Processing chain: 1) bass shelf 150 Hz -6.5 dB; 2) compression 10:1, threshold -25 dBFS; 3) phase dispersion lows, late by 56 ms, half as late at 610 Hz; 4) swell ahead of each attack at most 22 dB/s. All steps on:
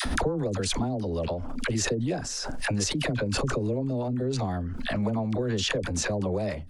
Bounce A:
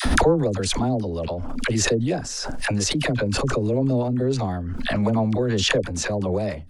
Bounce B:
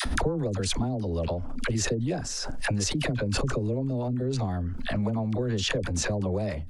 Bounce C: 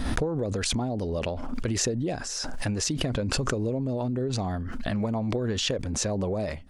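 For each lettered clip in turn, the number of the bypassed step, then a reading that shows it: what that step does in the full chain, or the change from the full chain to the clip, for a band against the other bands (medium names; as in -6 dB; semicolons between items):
2, mean gain reduction 4.0 dB; 1, 125 Hz band +2.5 dB; 3, 2 kHz band -3.5 dB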